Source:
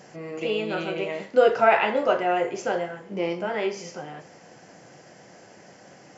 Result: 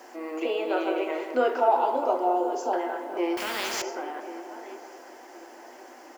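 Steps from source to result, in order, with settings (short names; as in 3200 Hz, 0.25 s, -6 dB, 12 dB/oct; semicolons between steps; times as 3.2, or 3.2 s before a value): 0.45–1.02 bell 590 Hz +8.5 dB 0.66 oct; 1.6–2.73 Chebyshev band-stop 930–4100 Hz, order 2; feedback echo 1.07 s, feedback 29%, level -19 dB; in parallel at +2 dB: compressor 16:1, threshold -29 dBFS, peak gain reduction 17.5 dB; on the sum: rippled Chebyshev high-pass 240 Hz, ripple 9 dB; bit-crush 10-bit; dark delay 0.201 s, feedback 59%, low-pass 2700 Hz, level -9.5 dB; 3.37–3.82 spectral compressor 4:1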